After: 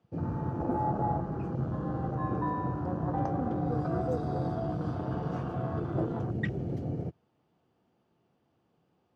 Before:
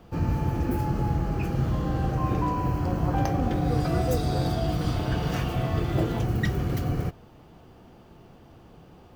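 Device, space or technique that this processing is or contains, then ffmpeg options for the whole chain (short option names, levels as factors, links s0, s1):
over-cleaned archive recording: -filter_complex "[0:a]highpass=120,lowpass=7500,afwtdn=0.0251,asettb=1/sr,asplit=3[s0][s1][s2];[s0]atrim=end=0.604[s3];[s1]atrim=start=0.6:end=1.21,asetpts=PTS-STARTPTS,afade=t=in:d=0.004:c=qsin,afade=t=out:st=0.606:d=0.004:c=qsin,equalizer=f=710:w=1.8:g=12[s4];[s2]atrim=start=1.206[s5];[s3][s4]acrossfade=d=0.004:c1=hsin:c2=qsin[s6];[s6][s5]acrossfade=d=0.004:c1=qsin:c2=hsin,volume=0.631"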